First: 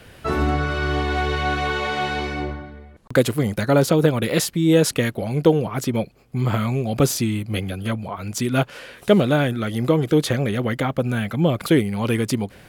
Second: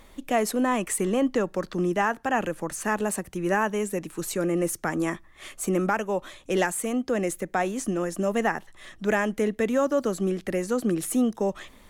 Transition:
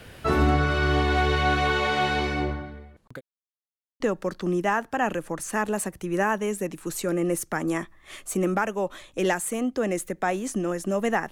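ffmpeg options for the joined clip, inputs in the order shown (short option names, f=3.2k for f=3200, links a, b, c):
-filter_complex "[0:a]apad=whole_dur=11.31,atrim=end=11.31,asplit=2[a][b];[a]atrim=end=3.21,asetpts=PTS-STARTPTS,afade=t=out:st=2.52:d=0.69:c=qsin[c];[b]atrim=start=3.21:end=4,asetpts=PTS-STARTPTS,volume=0[d];[1:a]atrim=start=1.32:end=8.63,asetpts=PTS-STARTPTS,afade=t=in:d=0.004:c=hsin[e];[c][d][e]concat=n=3:v=0:a=1"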